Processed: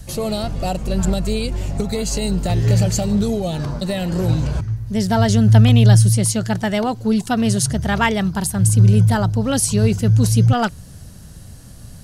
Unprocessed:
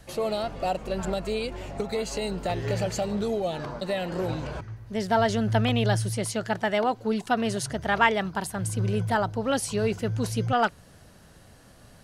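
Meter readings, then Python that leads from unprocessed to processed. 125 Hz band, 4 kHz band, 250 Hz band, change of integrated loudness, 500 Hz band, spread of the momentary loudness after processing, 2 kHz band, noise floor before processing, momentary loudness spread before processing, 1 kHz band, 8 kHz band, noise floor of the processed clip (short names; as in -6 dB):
+16.0 dB, +7.0 dB, +11.0 dB, +10.0 dB, +3.5 dB, 11 LU, +2.5 dB, -53 dBFS, 8 LU, +2.0 dB, +13.0 dB, -39 dBFS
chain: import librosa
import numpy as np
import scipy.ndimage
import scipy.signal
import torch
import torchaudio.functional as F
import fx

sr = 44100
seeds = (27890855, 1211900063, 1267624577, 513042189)

y = fx.bass_treble(x, sr, bass_db=15, treble_db=12)
y = F.gain(torch.from_numpy(y), 2.0).numpy()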